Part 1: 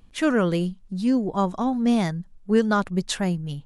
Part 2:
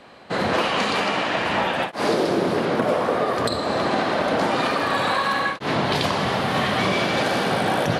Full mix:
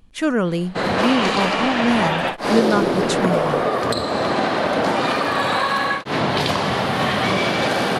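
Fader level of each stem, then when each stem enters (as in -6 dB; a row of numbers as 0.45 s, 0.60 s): +1.5 dB, +2.0 dB; 0.00 s, 0.45 s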